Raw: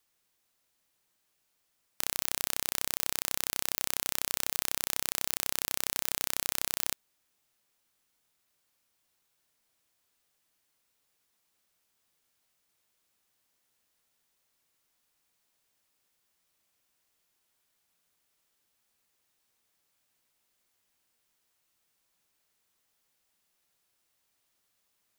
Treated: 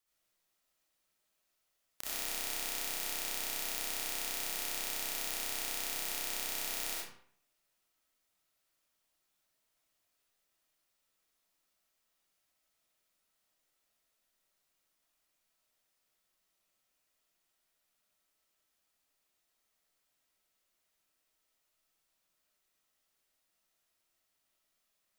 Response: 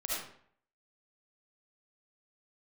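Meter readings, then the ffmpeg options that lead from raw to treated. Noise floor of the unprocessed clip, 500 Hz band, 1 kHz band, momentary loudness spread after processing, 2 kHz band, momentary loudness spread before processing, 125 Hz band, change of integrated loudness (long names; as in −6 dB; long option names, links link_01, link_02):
−77 dBFS, −2.5 dB, −3.5 dB, 2 LU, −2.5 dB, 1 LU, −9.5 dB, −4.5 dB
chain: -filter_complex "[1:a]atrim=start_sample=2205[link_01];[0:a][link_01]afir=irnorm=-1:irlink=0,volume=-7dB"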